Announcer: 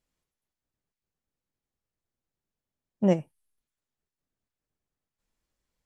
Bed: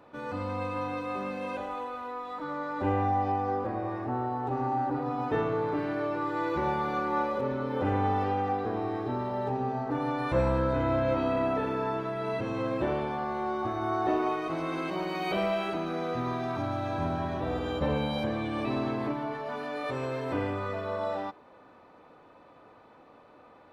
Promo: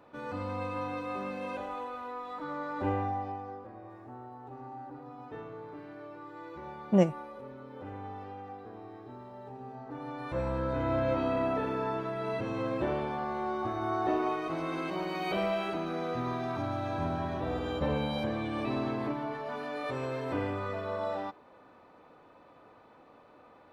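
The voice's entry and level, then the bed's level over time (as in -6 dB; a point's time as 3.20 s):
3.90 s, -0.5 dB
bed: 2.88 s -2.5 dB
3.65 s -15 dB
9.49 s -15 dB
10.99 s -2 dB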